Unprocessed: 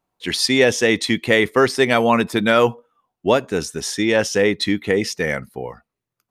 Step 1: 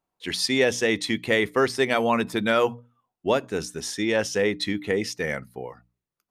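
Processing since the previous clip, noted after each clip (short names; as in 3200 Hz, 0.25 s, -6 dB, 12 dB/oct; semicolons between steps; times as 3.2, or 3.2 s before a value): notches 60/120/180/240/300 Hz; gain -6 dB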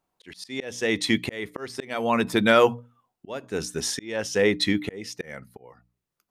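auto swell 0.541 s; gain +4 dB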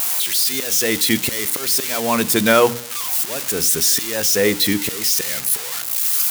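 switching spikes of -14.5 dBFS; on a send at -21.5 dB: reverb RT60 0.90 s, pre-delay 31 ms; on the sum: gain +3.5 dB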